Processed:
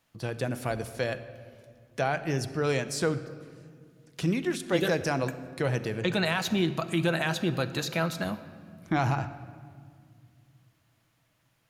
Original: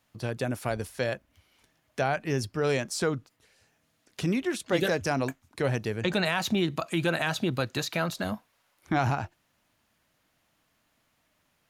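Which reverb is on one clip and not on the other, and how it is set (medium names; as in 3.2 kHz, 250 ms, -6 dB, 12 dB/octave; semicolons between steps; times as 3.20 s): simulated room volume 3700 m³, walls mixed, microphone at 0.7 m; trim -1 dB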